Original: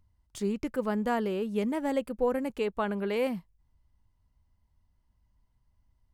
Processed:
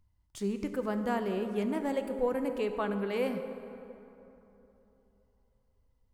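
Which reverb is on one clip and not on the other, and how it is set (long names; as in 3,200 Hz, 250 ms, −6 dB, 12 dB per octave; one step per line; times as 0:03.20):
dense smooth reverb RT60 3.3 s, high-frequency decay 0.5×, DRR 7 dB
level −3 dB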